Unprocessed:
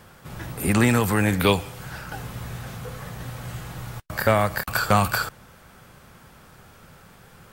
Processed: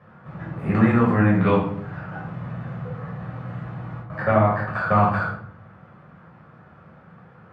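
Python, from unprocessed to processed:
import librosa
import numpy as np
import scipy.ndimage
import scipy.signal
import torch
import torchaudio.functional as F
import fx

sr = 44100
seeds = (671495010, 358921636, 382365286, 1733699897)

y = scipy.signal.sosfilt(scipy.signal.cheby1(2, 1.0, [120.0, 1500.0], 'bandpass', fs=sr, output='sos'), x)
y = fx.room_shoebox(y, sr, seeds[0], volume_m3=810.0, walls='furnished', distance_m=6.0)
y = F.gain(torch.from_numpy(y), -6.5).numpy()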